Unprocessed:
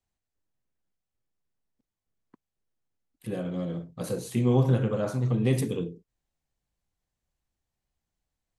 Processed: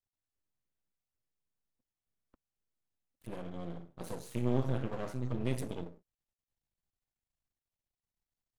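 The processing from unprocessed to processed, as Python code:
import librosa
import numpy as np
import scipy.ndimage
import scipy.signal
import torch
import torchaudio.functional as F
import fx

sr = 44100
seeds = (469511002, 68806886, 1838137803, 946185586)

y = fx.room_flutter(x, sr, wall_m=9.9, rt60_s=0.34, at=(3.61, 4.83))
y = np.maximum(y, 0.0)
y = F.gain(torch.from_numpy(y), -6.5).numpy()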